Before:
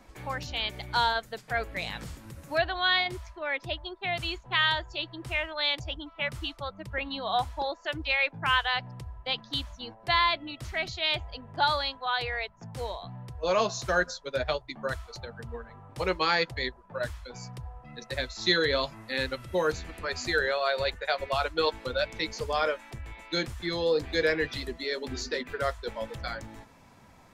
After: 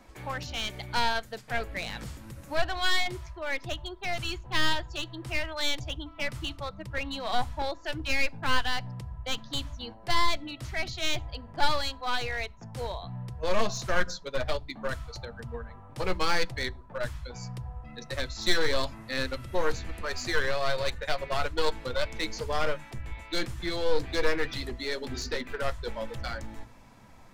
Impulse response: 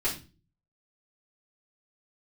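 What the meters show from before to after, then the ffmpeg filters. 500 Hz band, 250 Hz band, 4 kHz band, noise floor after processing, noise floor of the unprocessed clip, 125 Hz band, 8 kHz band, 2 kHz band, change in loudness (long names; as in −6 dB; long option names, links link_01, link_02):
−2.0 dB, 0.0 dB, −2.0 dB, −49 dBFS, −55 dBFS, +1.5 dB, +4.0 dB, −2.5 dB, −2.5 dB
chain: -filter_complex "[0:a]aeval=exprs='clip(val(0),-1,0.0299)':channel_layout=same,asplit=2[link_01][link_02];[link_02]asubboost=boost=10.5:cutoff=200[link_03];[1:a]atrim=start_sample=2205[link_04];[link_03][link_04]afir=irnorm=-1:irlink=0,volume=-29.5dB[link_05];[link_01][link_05]amix=inputs=2:normalize=0"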